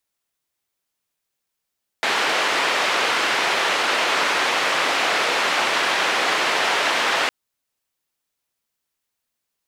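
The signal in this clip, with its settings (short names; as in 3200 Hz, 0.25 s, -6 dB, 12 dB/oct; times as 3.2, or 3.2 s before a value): noise band 430–2500 Hz, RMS -20.5 dBFS 5.26 s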